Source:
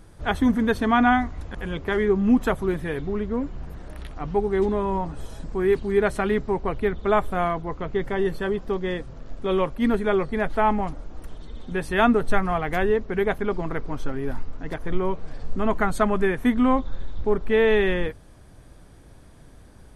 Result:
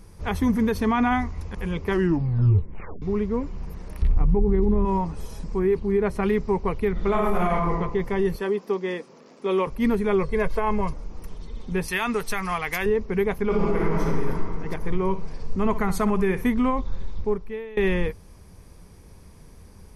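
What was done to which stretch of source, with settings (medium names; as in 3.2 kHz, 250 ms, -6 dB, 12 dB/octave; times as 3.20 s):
1.89 s: tape stop 1.13 s
4.02–4.85 s: RIAA curve playback
5.59–6.23 s: treble shelf 2.5 kHz -10.5 dB
6.92–7.72 s: reverb throw, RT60 0.82 s, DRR -3.5 dB
8.35–9.67 s: high-pass 230 Hz 24 dB/octave
10.23–10.94 s: comb 1.9 ms, depth 62%
11.88–12.86 s: tilt shelf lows -9 dB
13.43–14.01 s: reverb throw, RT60 2.9 s, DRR -5.5 dB
14.76–16.50 s: flutter echo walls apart 10.7 m, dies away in 0.26 s
17.16–17.77 s: fade out quadratic, to -23.5 dB
whole clip: rippled EQ curve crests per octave 0.83, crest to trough 7 dB; peak limiter -13 dBFS; tone controls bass +3 dB, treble +5 dB; trim -1.5 dB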